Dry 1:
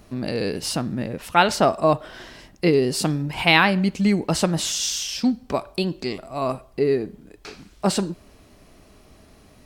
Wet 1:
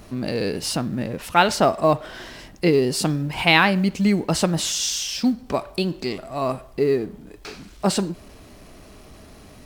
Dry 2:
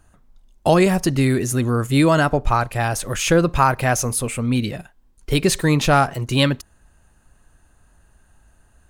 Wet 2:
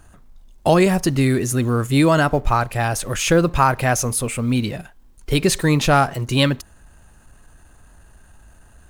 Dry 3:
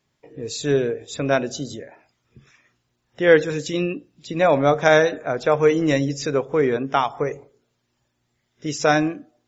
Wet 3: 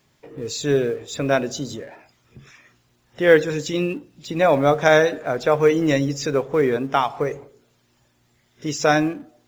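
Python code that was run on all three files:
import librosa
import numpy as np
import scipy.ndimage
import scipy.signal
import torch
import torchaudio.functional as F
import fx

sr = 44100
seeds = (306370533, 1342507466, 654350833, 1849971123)

y = fx.law_mismatch(x, sr, coded='mu')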